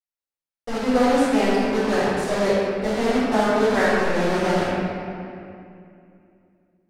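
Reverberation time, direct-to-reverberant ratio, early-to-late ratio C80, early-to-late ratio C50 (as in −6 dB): 2.5 s, −14.0 dB, −1.5 dB, −4.5 dB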